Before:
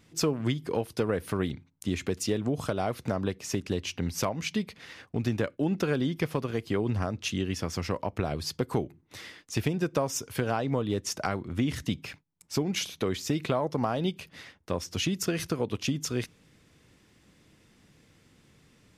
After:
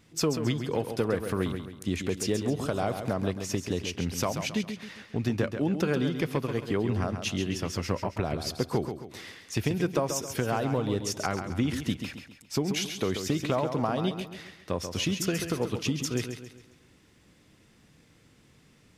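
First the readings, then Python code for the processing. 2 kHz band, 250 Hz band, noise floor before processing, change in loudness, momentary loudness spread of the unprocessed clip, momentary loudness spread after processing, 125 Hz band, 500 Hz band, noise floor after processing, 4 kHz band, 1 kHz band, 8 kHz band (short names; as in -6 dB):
+0.5 dB, +1.0 dB, -63 dBFS, +0.5 dB, 6 LU, 8 LU, +0.5 dB, +1.0 dB, -60 dBFS, +1.0 dB, +0.5 dB, +1.0 dB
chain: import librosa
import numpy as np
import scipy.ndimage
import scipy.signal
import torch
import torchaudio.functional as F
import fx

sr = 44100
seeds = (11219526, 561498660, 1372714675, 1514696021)

y = fx.echo_feedback(x, sr, ms=135, feedback_pct=41, wet_db=-8)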